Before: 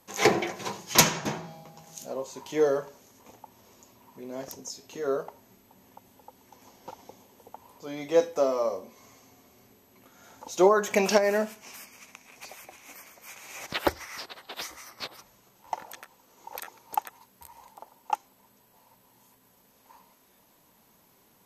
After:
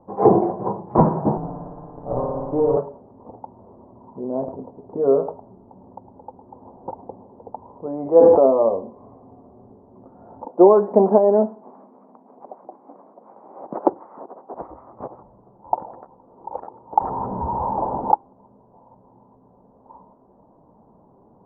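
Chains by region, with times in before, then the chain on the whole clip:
1.37–2.77 s: comb filter that takes the minimum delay 6.8 ms + compression 5:1, threshold -30 dBFS + flutter echo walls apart 9.7 m, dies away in 1.5 s
4.23–6.90 s: low-pass 1.9 kHz 24 dB/octave + delay 107 ms -12.5 dB
7.86–8.46 s: bass shelf 340 Hz -7.5 dB + decay stretcher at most 23 dB/s
10.45–14.54 s: high-pass 200 Hz 24 dB/octave + distance through air 460 m
17.00–18.12 s: power-law waveshaper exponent 0.35 + echo whose repeats swap between lows and highs 167 ms, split 1.8 kHz, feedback 62%, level -6.5 dB
whole clip: steep low-pass 940 Hz 36 dB/octave; dynamic bell 580 Hz, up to -3 dB, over -37 dBFS, Q 3.7; loudness maximiser +13.5 dB; trim -1 dB

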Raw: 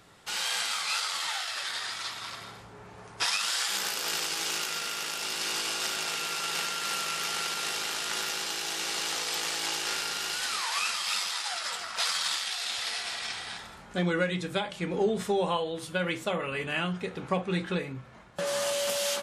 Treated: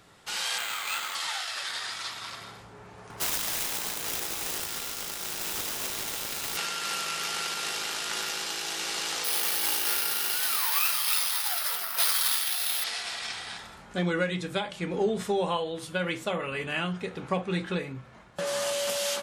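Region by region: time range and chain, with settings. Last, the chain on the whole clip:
0.58–1.15 s: median filter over 9 samples + RIAA curve recording + careless resampling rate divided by 4×, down filtered, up hold
3.10–6.57 s: self-modulated delay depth 0.89 ms + band-stop 4.4 kHz, Q 27 + upward compressor, threshold -36 dBFS
9.24–12.84 s: high-pass 150 Hz + careless resampling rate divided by 3×, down filtered, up zero stuff
whole clip: none

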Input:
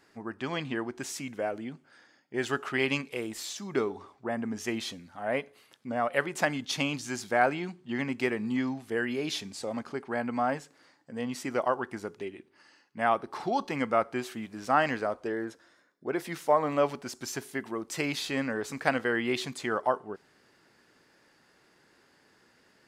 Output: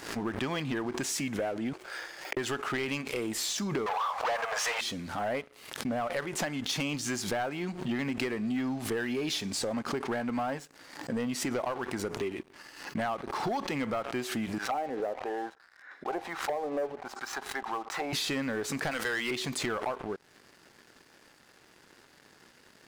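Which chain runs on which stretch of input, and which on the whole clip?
1.73–2.37 s: steep high-pass 330 Hz 96 dB/octave + peaking EQ 2.4 kHz +3.5 dB 0.29 oct + compressor with a negative ratio -56 dBFS, ratio -0.5
3.86–4.81 s: peaking EQ 1.1 kHz +6 dB 0.88 oct + overdrive pedal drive 31 dB, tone 2.1 kHz, clips at -16 dBFS + brick-wall FIR high-pass 450 Hz
14.58–18.13 s: small resonant body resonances 790/3900 Hz, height 14 dB, ringing for 65 ms + auto-wah 450–1900 Hz, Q 2.4, down, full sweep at -23 dBFS
18.91–19.31 s: tilt EQ +3.5 dB/octave + waveshaping leveller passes 1
whole clip: compression 5:1, threshold -40 dBFS; waveshaping leveller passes 3; swell ahead of each attack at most 86 dB/s

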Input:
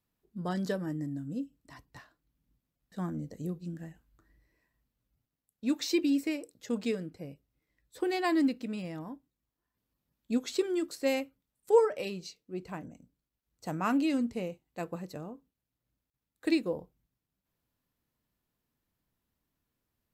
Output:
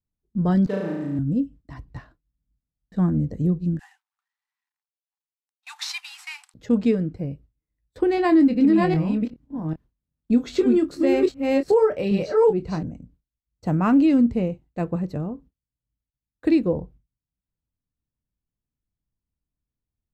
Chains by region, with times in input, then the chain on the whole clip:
0.66–1.19 s: median filter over 25 samples + high-pass 730 Hz 6 dB/octave + flutter echo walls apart 6.1 m, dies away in 1.1 s
3.79–6.54 s: CVSD coder 64 kbps + brick-wall FIR high-pass 730 Hz + treble shelf 2.4 kHz +7 dB
8.15–12.83 s: chunks repeated in reverse 396 ms, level -1 dB + doubling 25 ms -9 dB
whole clip: RIAA curve playback; gate with hold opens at -47 dBFS; loudness maximiser +15.5 dB; trim -9 dB

